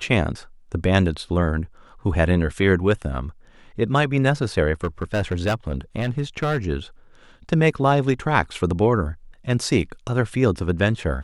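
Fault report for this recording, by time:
4.84–6.58 clipped -17 dBFS

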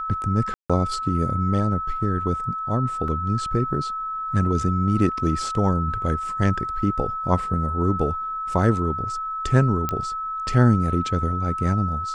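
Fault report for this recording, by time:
tone 1300 Hz -26 dBFS
0.54–0.7 gap 0.156 s
3.08 gap 2.6 ms
9.89 pop -10 dBFS

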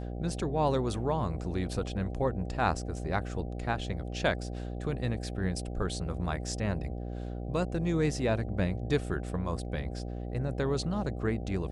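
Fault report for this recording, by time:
buzz 60 Hz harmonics 13 -37 dBFS

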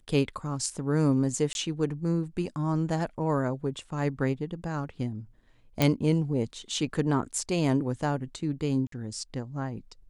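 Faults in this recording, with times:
1.53–1.55 gap 21 ms
5.82 pop
8.87–8.92 gap 53 ms

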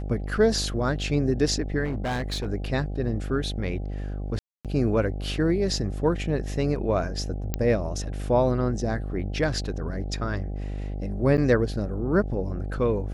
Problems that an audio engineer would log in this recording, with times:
buzz 50 Hz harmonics 16 -31 dBFS
1.84–2.48 clipped -24.5 dBFS
4.39–4.65 gap 0.257 s
7.54 pop -11 dBFS
11.37–11.38 gap 8.4 ms

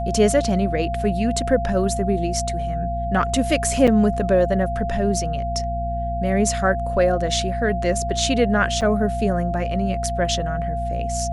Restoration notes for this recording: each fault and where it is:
hum 60 Hz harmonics 4 -27 dBFS
tone 690 Hz -25 dBFS
3.87–3.88 gap 6.5 ms
8.81–8.82 gap 7.1 ms

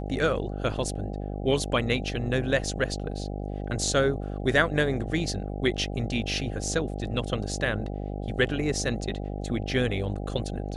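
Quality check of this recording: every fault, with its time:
buzz 50 Hz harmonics 16 -33 dBFS

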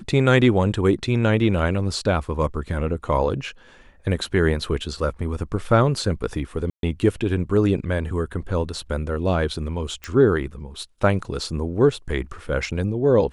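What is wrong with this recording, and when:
6.7–6.83 gap 0.132 s
10.04 pop -16 dBFS

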